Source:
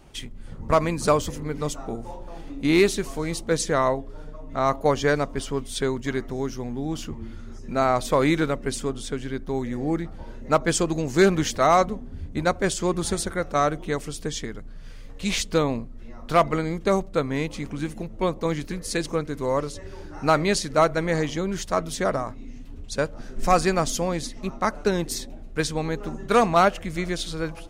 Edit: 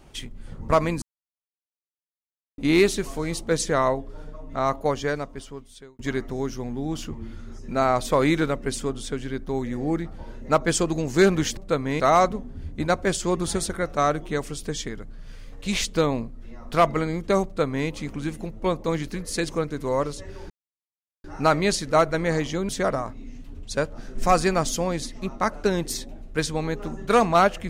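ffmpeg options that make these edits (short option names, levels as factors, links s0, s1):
-filter_complex "[0:a]asplit=8[s0][s1][s2][s3][s4][s5][s6][s7];[s0]atrim=end=1.02,asetpts=PTS-STARTPTS,afade=t=out:st=1.016:d=0.004:c=hsin[s8];[s1]atrim=start=1.02:end=2.58,asetpts=PTS-STARTPTS,volume=0[s9];[s2]atrim=start=2.58:end=5.99,asetpts=PTS-STARTPTS,afade=t=in:d=0.004:c=hsin,afade=t=out:st=1.84:d=1.57[s10];[s3]atrim=start=5.99:end=11.572,asetpts=PTS-STARTPTS,afade=t=in:d=0.004:c=hsin[s11];[s4]atrim=start=17.018:end=17.452[s12];[s5]atrim=start=11.568:end=20.07,asetpts=PTS-STARTPTS,afade=t=out:st=8.498:d=0.004:c=hsin,apad=pad_dur=0.74[s13];[s6]atrim=start=20.07:end=21.522,asetpts=PTS-STARTPTS,afade=t=in:d=0.004:c=hsin[s14];[s7]atrim=start=21.898[s15];[s8][s9][s10][s11]concat=n=4:v=0:a=1[s16];[s16][s12]acrossfade=d=0.004:c1=hsin:c2=hsin[s17];[s13][s14]concat=n=2:v=0:a=1[s18];[s17][s18]acrossfade=d=0.004:c1=hsin:c2=hsin[s19];[s19][s15]acrossfade=d=0.004:c1=hsin:c2=hsin"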